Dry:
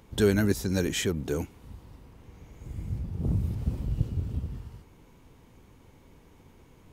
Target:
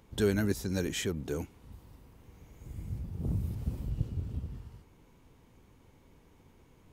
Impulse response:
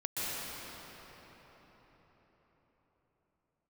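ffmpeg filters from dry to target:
-filter_complex "[0:a]asettb=1/sr,asplit=3[a][b][c];[a]atrim=end=1.724[d];[b]atrim=start=1.72:end=3.9,asetpts=PTS-STARTPTS,afade=t=in:d=0.004:c=qsin,afade=t=out:st=2.176:d=0.004:c=qsin,highshelf=f=10k:g=9[e];[c]atrim=start=3.896[f];[d][e]acrossfade=d=0.004:c1=hsin:c2=qsin[g];[g][f]acrossfade=d=0.004:c1=qsin:c2=hsin,volume=-5dB"

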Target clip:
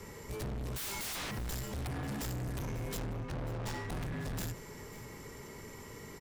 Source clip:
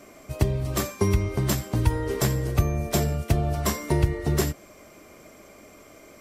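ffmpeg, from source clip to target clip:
-filter_complex "[0:a]asplit=3[a][b][c];[a]afade=t=out:st=0.75:d=0.02[d];[b]aeval=exprs='0.0251*sin(PI/2*2.51*val(0)/0.0251)':c=same,afade=t=in:st=0.75:d=0.02,afade=t=out:st=1.3:d=0.02[e];[c]afade=t=in:st=1.3:d=0.02[f];[d][e][f]amix=inputs=3:normalize=0,asplit=3[g][h][i];[g]afade=t=out:st=2.02:d=0.02[j];[h]asubboost=boost=4.5:cutoff=75,afade=t=in:st=2.02:d=0.02,afade=t=out:st=2.46:d=0.02[k];[i]afade=t=in:st=2.46:d=0.02[l];[j][k][l]amix=inputs=3:normalize=0,afreqshift=-190,asettb=1/sr,asplit=3[m][n][o];[m]atrim=end=2.984[p];[n]atrim=start=2.98:end=3.9,asetpts=PTS-STARTPTS,afade=t=in:d=0.004:c=qsin,afade=t=out:st=0.916:d=0.004:c=qsin,adynamicsmooth=sensitivity=7.5:basefreq=1.6k[q];[o]atrim=start=3.896[r];[p][q]acrossfade=d=0.004:c1=hsin:c2=qsin[s];[s][r]acrossfade=d=0.004:c1=qsin:c2=hsin,asoftclip=type=tanh:threshold=-38dB,asplit=2[t][u];[u]aecho=0:1:542:0.133[v];[t][v]amix=inputs=2:normalize=0,volume=1.5dB"

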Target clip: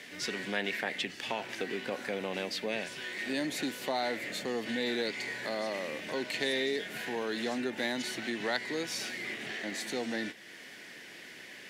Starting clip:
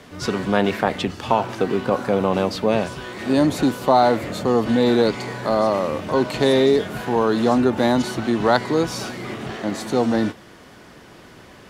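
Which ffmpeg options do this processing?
-af "highpass=220,highshelf=f=1.5k:t=q:w=3:g=7.5,acompressor=threshold=-35dB:ratio=1.5,volume=-8dB"

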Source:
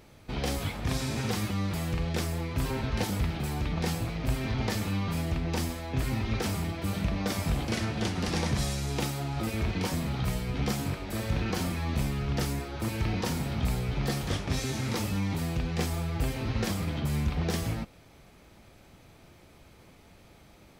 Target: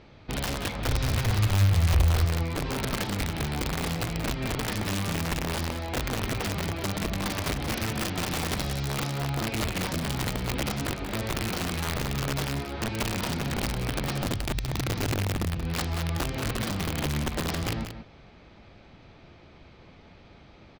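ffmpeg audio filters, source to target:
-filter_complex "[0:a]asplit=3[a][b][c];[a]afade=t=out:st=14.22:d=0.02[d];[b]asubboost=boost=11:cutoff=100,afade=t=in:st=14.22:d=0.02,afade=t=out:st=15.54:d=0.02[e];[c]afade=t=in:st=15.54:d=0.02[f];[d][e][f]amix=inputs=3:normalize=0,acompressor=threshold=-28dB:ratio=20,lowpass=f=4.7k:w=0.5412,lowpass=f=4.7k:w=1.3066,aeval=exprs='(mod(20*val(0)+1,2)-1)/20':c=same,asettb=1/sr,asplit=3[g][h][i];[g]atrim=end=0.874[j];[h]atrim=start=0.87:end=2.25,asetpts=PTS-STARTPTS,afade=t=in:d=0.004:c=qsin,afade=t=out:st=1.376:d=0.004:c=qsin,lowshelf=f=130:t=q:w=1.5:g=11[k];[i]atrim=start=2.246[l];[j][k]acrossfade=d=0.004:c1=hsin:c2=qsin[m];[m][l]acrossfade=d=0.004:c1=qsin:c2=hsin,aecho=1:1:181:0.335,volume=3dB"

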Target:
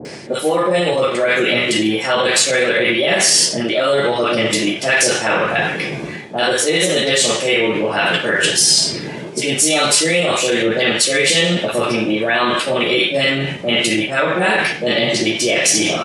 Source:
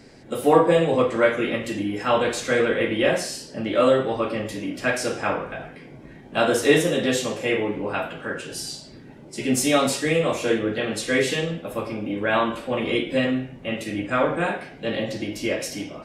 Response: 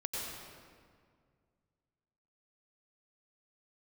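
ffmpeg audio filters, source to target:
-filter_complex "[0:a]aresample=22050,aresample=44100,areverse,acompressor=threshold=-33dB:ratio=5,areverse,highpass=140,equalizer=f=250:w=7.2:g=-12,asetrate=46722,aresample=44100,atempo=0.943874,acrossover=split=880[a][b];[b]adelay=50[c];[a][c]amix=inputs=2:normalize=0,alimiter=level_in=27.5dB:limit=-1dB:release=50:level=0:latency=1,adynamicequalizer=threshold=0.0562:dfrequency=1600:dqfactor=0.7:tfrequency=1600:tqfactor=0.7:attack=5:release=100:ratio=0.375:range=3:mode=boostabove:tftype=highshelf,volume=-7dB"

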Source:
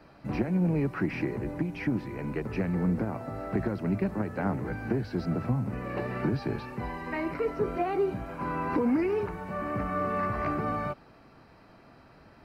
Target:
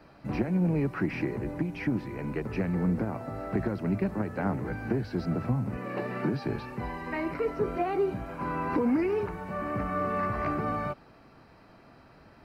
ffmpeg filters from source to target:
-filter_complex "[0:a]asettb=1/sr,asplit=3[a][b][c];[a]atrim=end=5.774[d];[b]atrim=start=5.77:end=6.44,asetpts=PTS-STARTPTS,afade=t=in:d=0.004:c=qsin,afade=t=out:st=0.666:d=0.004:c=qsin,highpass=f=130:w=0.5412,highpass=f=130:w=1.3066[e];[c]atrim=start=6.436[f];[d][e]acrossfade=d=0.004:c1=hsin:c2=qsin[g];[g][f]acrossfade=d=0.004:c1=qsin:c2=hsin"

